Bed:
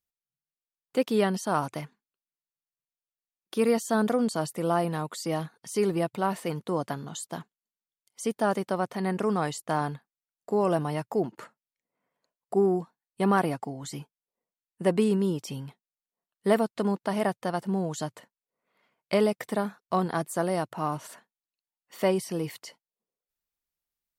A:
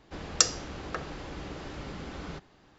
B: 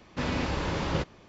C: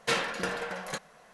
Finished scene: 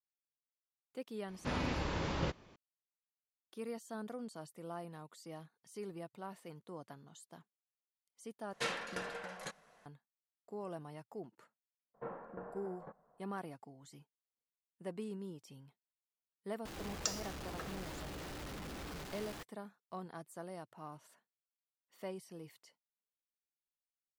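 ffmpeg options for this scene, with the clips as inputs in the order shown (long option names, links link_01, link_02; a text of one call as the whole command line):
ffmpeg -i bed.wav -i cue0.wav -i cue1.wav -i cue2.wav -filter_complex "[3:a]asplit=2[link_01][link_02];[0:a]volume=-19.5dB[link_03];[link_02]lowpass=frequency=1100:width=0.5412,lowpass=frequency=1100:width=1.3066[link_04];[1:a]aeval=exprs='val(0)+0.5*0.0447*sgn(val(0))':channel_layout=same[link_05];[link_03]asplit=2[link_06][link_07];[link_06]atrim=end=8.534[link_08];[link_01]atrim=end=1.33,asetpts=PTS-STARTPTS,volume=-9.5dB[link_09];[link_07]atrim=start=9.856[link_10];[2:a]atrim=end=1.28,asetpts=PTS-STARTPTS,volume=-7dB,afade=type=in:duration=0.004:curve=hsin,afade=type=out:start_time=1.276:duration=0.004:curve=hsin,adelay=1280[link_11];[link_04]atrim=end=1.33,asetpts=PTS-STARTPTS,volume=-12.5dB,afade=type=in:duration=0.004:curve=hsin,afade=type=out:start_time=1.326:duration=0.004:curve=hsin,adelay=11940[link_12];[link_05]atrim=end=2.78,asetpts=PTS-STARTPTS,volume=-15.5dB,afade=type=in:duration=0.004:curve=hsin,afade=type=out:start_time=2.776:duration=0.004:curve=hsin,adelay=16650[link_13];[link_08][link_09]acrossfade=duration=0.004:curve1=hsin:curve2=hsin[link_14];[link_14][link_10]acrossfade=duration=0.004:curve1=hsin:curve2=hsin[link_15];[link_15][link_11][link_12][link_13]amix=inputs=4:normalize=0" out.wav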